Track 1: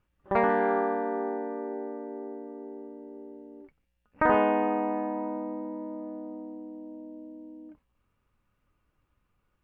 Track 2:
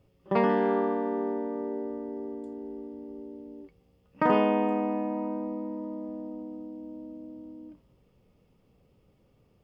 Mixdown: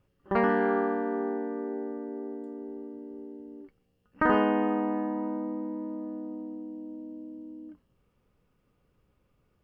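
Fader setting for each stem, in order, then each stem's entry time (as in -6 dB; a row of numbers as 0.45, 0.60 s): -1.0, -8.0 dB; 0.00, 0.00 s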